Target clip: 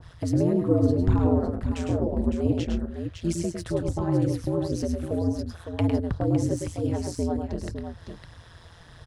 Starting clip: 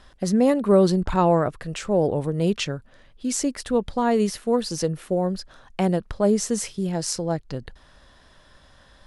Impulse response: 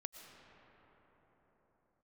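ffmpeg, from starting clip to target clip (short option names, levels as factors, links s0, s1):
-filter_complex "[0:a]acrossover=split=320[s0][s1];[s1]acompressor=threshold=0.0178:ratio=6[s2];[s0][s2]amix=inputs=2:normalize=0,aphaser=in_gain=1:out_gain=1:delay=4.3:decay=0.44:speed=1.8:type=triangular,aeval=exprs='val(0)*sin(2*PI*85*n/s)':c=same,aecho=1:1:105|128|558:0.531|0.168|0.376,adynamicequalizer=threshold=0.00355:dfrequency=1700:dqfactor=0.7:tfrequency=1700:tqfactor=0.7:attack=5:release=100:ratio=0.375:range=3:mode=cutabove:tftype=highshelf,volume=1.41"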